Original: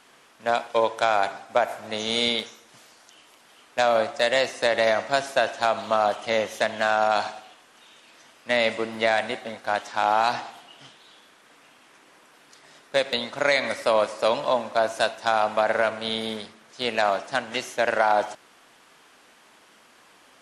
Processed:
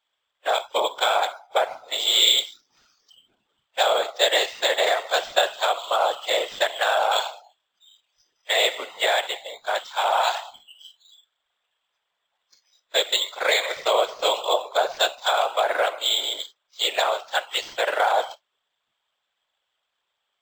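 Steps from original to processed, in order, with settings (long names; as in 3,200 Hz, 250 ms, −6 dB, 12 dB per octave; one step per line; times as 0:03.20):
Butterworth high-pass 500 Hz 48 dB per octave
noise reduction from a noise print of the clip's start 25 dB
parametric band 3,400 Hz +14.5 dB 0.38 octaves
random phases in short frames
floating-point word with a short mantissa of 6 bits
linearly interpolated sample-rate reduction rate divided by 4×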